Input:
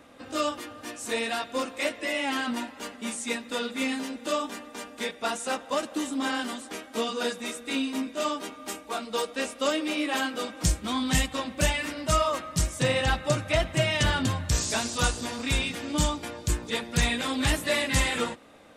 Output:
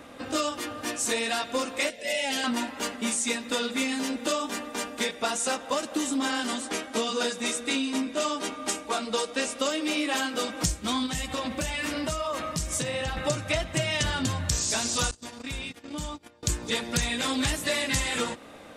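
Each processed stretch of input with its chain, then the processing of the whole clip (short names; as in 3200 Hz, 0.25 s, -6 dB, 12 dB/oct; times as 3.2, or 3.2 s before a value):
1.9–2.44 transient shaper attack -9 dB, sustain -3 dB + fixed phaser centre 310 Hz, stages 6
6.47–9.59 LPF 11000 Hz 24 dB/oct + notches 50/100/150 Hz
11.06–13.17 compressor 12:1, threshold -32 dBFS + doubler 13 ms -11 dB
15.11–16.43 gate -33 dBFS, range -26 dB + compressor 3:1, threshold -43 dBFS
whole clip: dynamic EQ 6500 Hz, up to +6 dB, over -45 dBFS, Q 0.88; compressor, threshold -31 dBFS; gain +6.5 dB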